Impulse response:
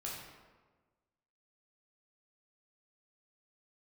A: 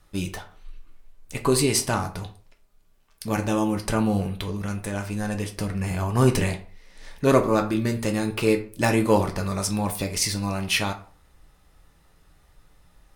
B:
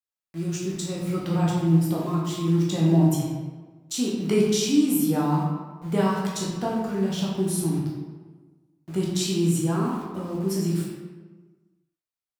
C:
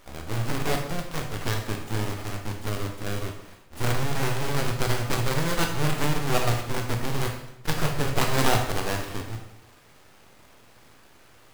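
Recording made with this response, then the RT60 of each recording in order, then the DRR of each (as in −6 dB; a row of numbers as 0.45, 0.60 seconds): B; 0.40, 1.4, 0.80 seconds; 4.0, −4.5, 2.5 decibels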